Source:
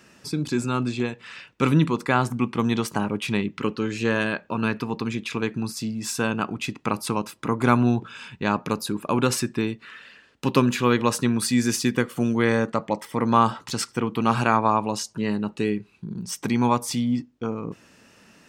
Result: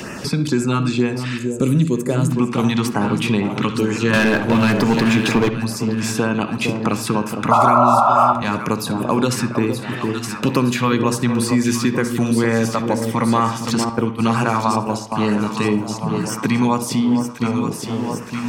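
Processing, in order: LFO notch sine 2.1 Hz 340–4100 Hz; in parallel at -0.5 dB: limiter -14.5 dBFS, peak gain reduction 11 dB; on the sum: echo with dull and thin repeats by turns 0.459 s, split 980 Hz, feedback 69%, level -8 dB; 1.37–2.3 spectral gain 660–6200 Hz -12 dB; 4.13–5.49 sample leveller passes 3; 7.51–8.33 painted sound noise 560–1400 Hz -8 dBFS; 13.89–15.12 gate -19 dBFS, range -16 dB; on a send at -11 dB: reverb, pre-delay 48 ms; on the sum: three-band squash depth 70%; gain -1 dB

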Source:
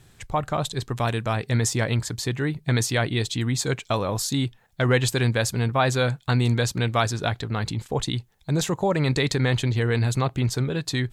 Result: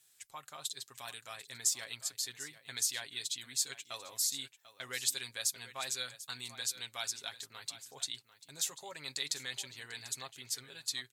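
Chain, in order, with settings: differentiator; on a send: echo 0.743 s -14.5 dB; on the sum: dynamic EQ 4500 Hz, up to +3 dB, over -42 dBFS, Q 1.1; comb 7.4 ms, depth 51%; gain -5.5 dB

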